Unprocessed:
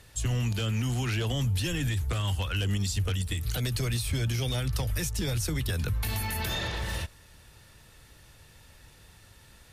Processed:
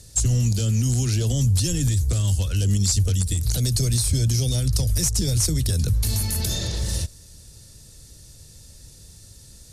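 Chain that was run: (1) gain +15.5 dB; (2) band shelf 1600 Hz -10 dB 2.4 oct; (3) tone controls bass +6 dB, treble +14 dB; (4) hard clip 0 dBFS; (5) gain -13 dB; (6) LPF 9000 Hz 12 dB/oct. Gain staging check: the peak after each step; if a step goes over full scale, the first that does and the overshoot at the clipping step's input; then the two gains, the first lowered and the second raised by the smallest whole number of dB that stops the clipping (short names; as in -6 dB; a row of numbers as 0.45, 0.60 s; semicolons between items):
-4.0, -3.5, +6.5, 0.0, -13.0, -12.0 dBFS; step 3, 6.5 dB; step 1 +8.5 dB, step 5 -6 dB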